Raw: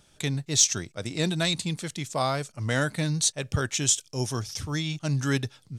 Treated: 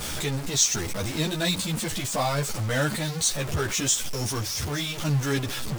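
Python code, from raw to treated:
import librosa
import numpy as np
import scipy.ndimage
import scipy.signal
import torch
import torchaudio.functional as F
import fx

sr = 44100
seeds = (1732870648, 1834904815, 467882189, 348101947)

y = x + 0.5 * 10.0 ** (-23.0 / 20.0) * np.sign(x)
y = fx.ensemble(y, sr)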